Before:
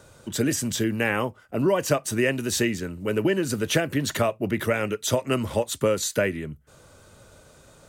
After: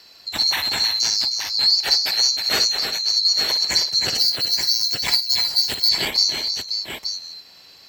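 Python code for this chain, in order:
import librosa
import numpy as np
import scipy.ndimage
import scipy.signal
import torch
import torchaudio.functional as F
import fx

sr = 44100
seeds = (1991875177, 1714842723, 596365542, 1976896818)

y = fx.band_swap(x, sr, width_hz=4000)
y = scipy.signal.sosfilt(scipy.signal.butter(2, 44.0, 'highpass', fs=sr, output='sos'), y)
y = fx.high_shelf(y, sr, hz=5400.0, db=-12.0)
y = fx.dmg_crackle(y, sr, seeds[0], per_s=240.0, level_db=-54.0, at=(1.96, 2.41), fade=0.02)
y = fx.echo_multitap(y, sr, ms=(57, 313, 377, 875), db=(-11.0, -7.5, -17.5, -8.0))
y = fx.resample_bad(y, sr, factor=2, down='none', up='hold', at=(4.18, 5.89))
y = fx.transformer_sat(y, sr, knee_hz=1900.0)
y = F.gain(torch.from_numpy(y), 8.0).numpy()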